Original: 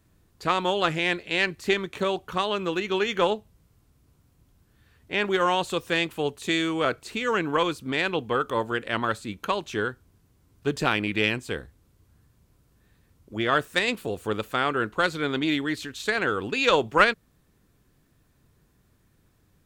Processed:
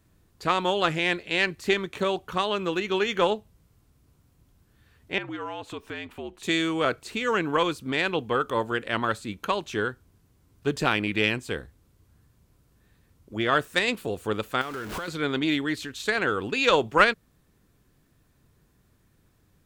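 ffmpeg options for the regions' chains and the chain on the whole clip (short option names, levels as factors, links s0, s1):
-filter_complex "[0:a]asettb=1/sr,asplit=3[s0][s1][s2];[s0]atrim=end=5.184[s3];[s1]atrim=start=5.18:end=6.43,asetpts=PTS-STARTPTS,afade=t=in:d=0.004:c=qsin,afade=t=out:st=1.246:d=0.004:c=qsin,bass=f=250:g=-5,treble=f=4000:g=-11,acompressor=threshold=0.0158:ratio=2.5:attack=3.2:release=140:knee=1:detection=peak,afreqshift=-66[s4];[s2]atrim=start=6.426[s5];[s3][s4]acrossfade=d=0.004:c1=hsin:c2=qsin[s6];[s6][s5]acrossfade=d=0.004:c1=qsin:c2=hsin,asettb=1/sr,asplit=3[s7][s8][s9];[s7]atrim=end=14.614[s10];[s8]atrim=start=14.61:end=15.08,asetpts=PTS-STARTPTS,afade=t=in:d=0.004:c=qsin,afade=t=out:st=0.466:d=0.004:c=qsin,aeval=exprs='val(0)+0.5*0.0447*sgn(val(0))':c=same,acompressor=threshold=0.0282:ratio=6:attack=3.2:release=140:knee=1:detection=peak[s11];[s9]atrim=start=15.076[s12];[s10][s11]acrossfade=d=0.004:c1=hsin:c2=qsin[s13];[s13][s12]acrossfade=d=0.004:c1=qsin:c2=hsin"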